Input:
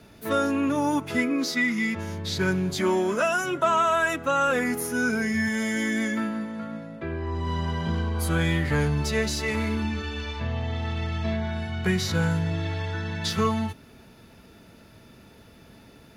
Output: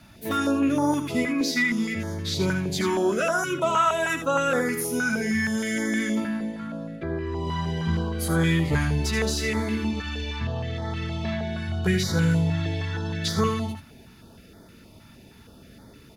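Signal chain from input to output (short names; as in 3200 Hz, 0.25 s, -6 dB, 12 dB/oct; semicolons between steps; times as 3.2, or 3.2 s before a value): echo 79 ms -7.5 dB; stepped notch 6.4 Hz 440–2700 Hz; gain +1.5 dB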